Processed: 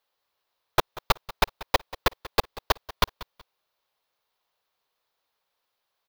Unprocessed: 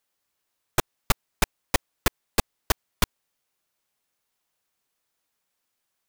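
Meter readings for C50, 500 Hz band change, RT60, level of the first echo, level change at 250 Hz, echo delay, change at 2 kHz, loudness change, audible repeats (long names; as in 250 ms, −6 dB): no reverb audible, +3.5 dB, no reverb audible, −18.0 dB, −4.0 dB, 187 ms, +0.5 dB, +1.0 dB, 2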